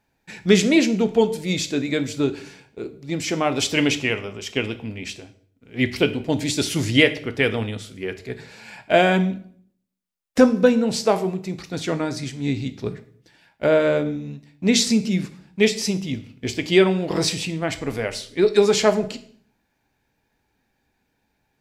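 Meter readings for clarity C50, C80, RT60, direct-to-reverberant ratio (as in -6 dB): 15.0 dB, 18.5 dB, 0.55 s, 9.0 dB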